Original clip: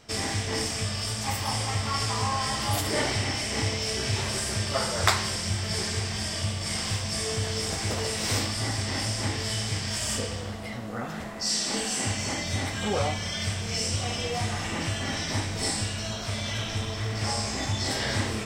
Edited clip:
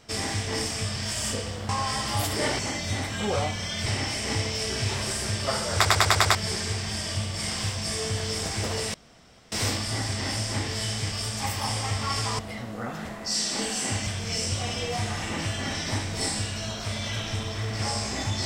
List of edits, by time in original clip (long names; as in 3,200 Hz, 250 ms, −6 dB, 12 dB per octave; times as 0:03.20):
0:00.96–0:02.23: swap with 0:09.81–0:10.54
0:05.02: stutter in place 0.10 s, 6 plays
0:08.21: splice in room tone 0.58 s
0:12.22–0:13.49: move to 0:03.13